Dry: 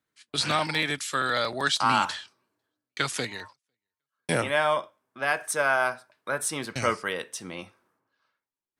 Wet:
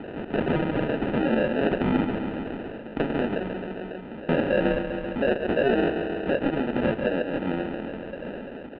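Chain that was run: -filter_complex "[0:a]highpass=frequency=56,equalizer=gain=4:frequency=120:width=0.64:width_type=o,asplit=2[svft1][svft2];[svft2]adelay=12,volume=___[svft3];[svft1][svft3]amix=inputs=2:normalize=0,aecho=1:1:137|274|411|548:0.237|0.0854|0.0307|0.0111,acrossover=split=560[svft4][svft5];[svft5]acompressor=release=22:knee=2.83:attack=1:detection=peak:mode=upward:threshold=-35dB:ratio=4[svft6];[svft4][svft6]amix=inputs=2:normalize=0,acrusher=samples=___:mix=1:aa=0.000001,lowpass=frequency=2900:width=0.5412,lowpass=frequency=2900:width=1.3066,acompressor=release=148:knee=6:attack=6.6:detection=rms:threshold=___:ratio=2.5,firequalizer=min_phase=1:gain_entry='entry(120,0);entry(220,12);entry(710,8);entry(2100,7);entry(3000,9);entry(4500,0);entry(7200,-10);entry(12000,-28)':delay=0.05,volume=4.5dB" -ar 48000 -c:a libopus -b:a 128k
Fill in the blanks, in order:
-3.5dB, 40, -39dB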